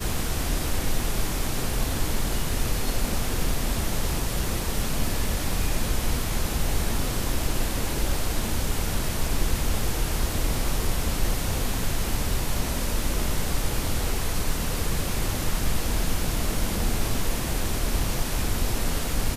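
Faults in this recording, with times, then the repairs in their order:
17.64 s: dropout 2.8 ms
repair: interpolate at 17.64 s, 2.8 ms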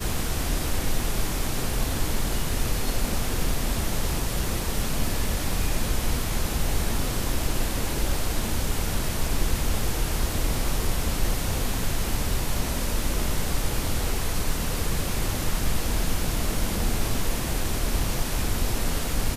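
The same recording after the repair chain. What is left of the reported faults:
nothing left

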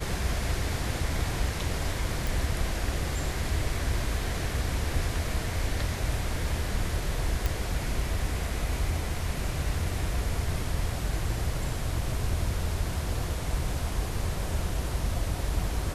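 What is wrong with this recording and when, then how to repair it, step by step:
2.27 s: pop
7.46 s: pop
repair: de-click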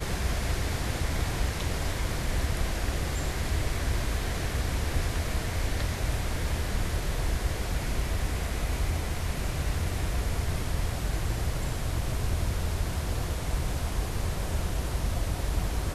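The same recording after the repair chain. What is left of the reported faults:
nothing left

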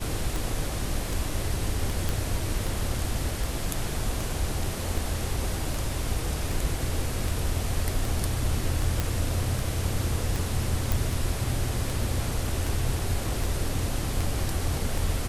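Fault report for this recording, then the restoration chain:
tick 78 rpm
2.09 s: pop
9.00 s: pop
10.92 s: pop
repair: de-click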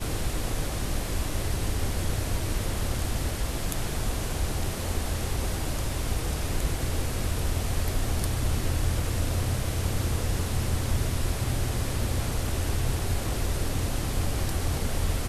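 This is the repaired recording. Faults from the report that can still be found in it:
nothing left

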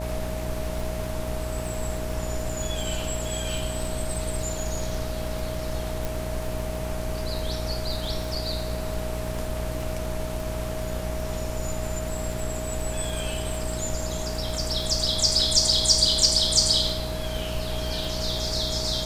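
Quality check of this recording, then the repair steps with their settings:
buzz 60 Hz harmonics 15 -32 dBFS
crackle 44 per s -31 dBFS
whine 630 Hz -34 dBFS
6.05 s: pop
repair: de-click; band-stop 630 Hz, Q 30; de-hum 60 Hz, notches 15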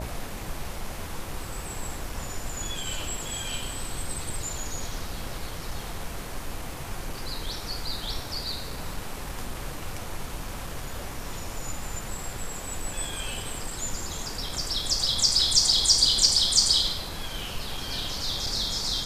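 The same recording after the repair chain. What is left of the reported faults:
nothing left

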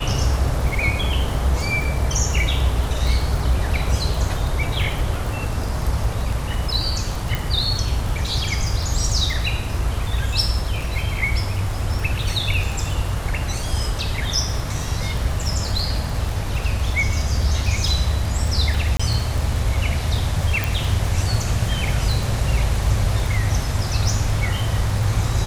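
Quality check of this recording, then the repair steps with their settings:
crackle 47 per s -25 dBFS
7.35 s: pop
18.97–19.00 s: dropout 25 ms
20.64 s: pop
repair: de-click; interpolate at 18.97 s, 25 ms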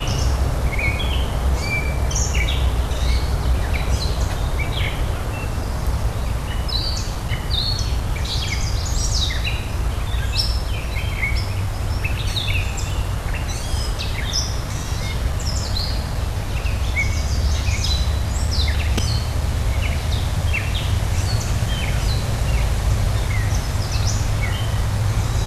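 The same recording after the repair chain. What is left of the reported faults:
nothing left

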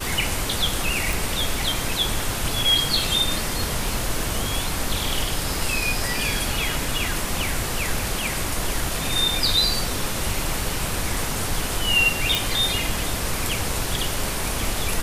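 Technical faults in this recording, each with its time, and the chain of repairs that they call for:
1.13 s: pop
12.35 s: pop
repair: de-click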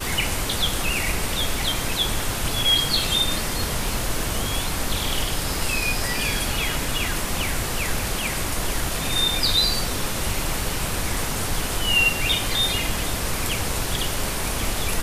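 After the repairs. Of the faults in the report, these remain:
nothing left

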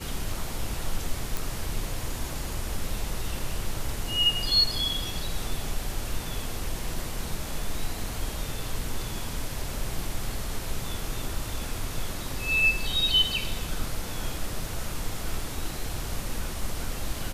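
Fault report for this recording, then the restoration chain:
1.37 s: pop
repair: de-click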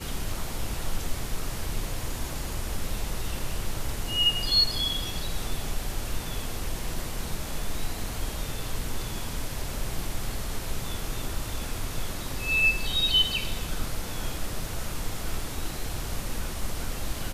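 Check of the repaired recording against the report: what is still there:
nothing left

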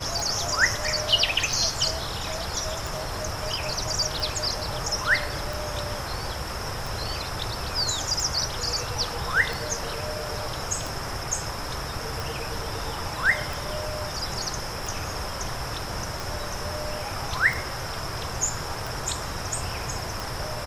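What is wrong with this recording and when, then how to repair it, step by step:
tick 45 rpm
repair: de-click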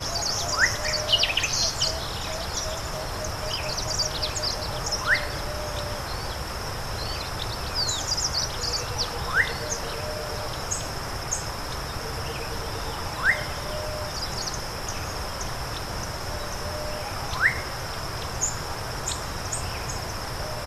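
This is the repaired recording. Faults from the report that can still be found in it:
nothing left

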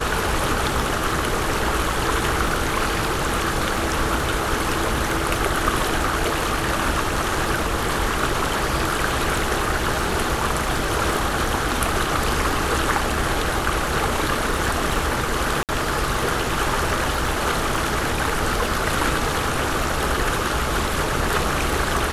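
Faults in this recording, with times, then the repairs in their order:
crackle 22 per s -28 dBFS
15.63–15.69 s: dropout 58 ms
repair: de-click; interpolate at 15.63 s, 58 ms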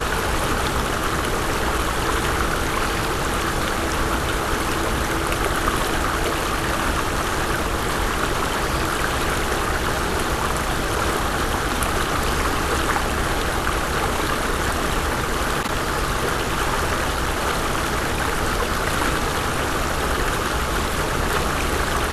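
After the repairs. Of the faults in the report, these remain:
nothing left

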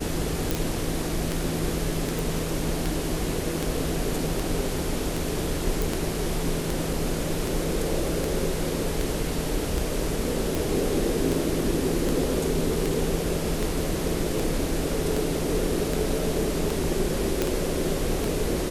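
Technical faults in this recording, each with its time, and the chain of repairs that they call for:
tick 78 rpm
0.51 s: pop
2.19 s: pop
5.82 s: pop
17.42 s: pop -9 dBFS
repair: de-click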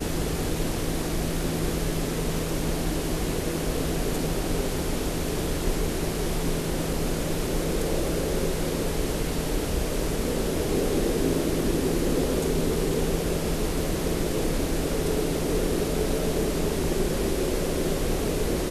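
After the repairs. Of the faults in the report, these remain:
nothing left

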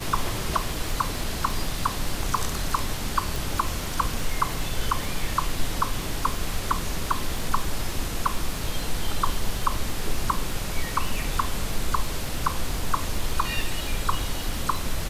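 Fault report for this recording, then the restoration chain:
crackle 23 per s -29 dBFS
3.36 s: pop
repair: de-click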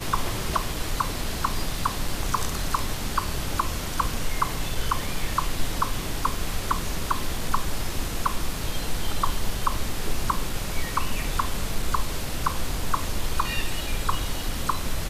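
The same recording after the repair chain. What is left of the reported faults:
nothing left

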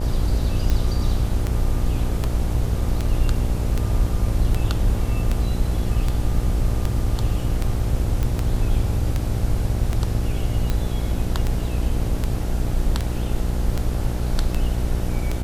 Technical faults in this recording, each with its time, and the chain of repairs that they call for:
buzz 60 Hz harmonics 14 -25 dBFS
tick 78 rpm -10 dBFS
8.23 s: pop -12 dBFS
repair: de-click; de-hum 60 Hz, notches 14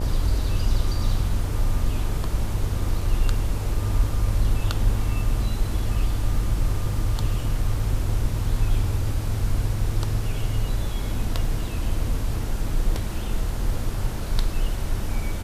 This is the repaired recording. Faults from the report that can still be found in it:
nothing left

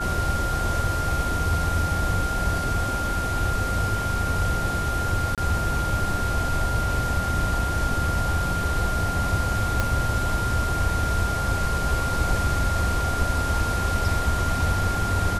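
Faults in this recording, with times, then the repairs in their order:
whine 1.4 kHz -27 dBFS
5.35–5.38 s: dropout 27 ms
9.80 s: pop -9 dBFS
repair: de-click; band-stop 1.4 kHz, Q 30; interpolate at 5.35 s, 27 ms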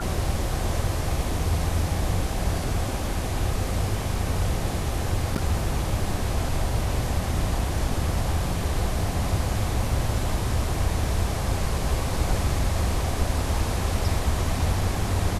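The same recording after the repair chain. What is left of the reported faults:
9.80 s: pop

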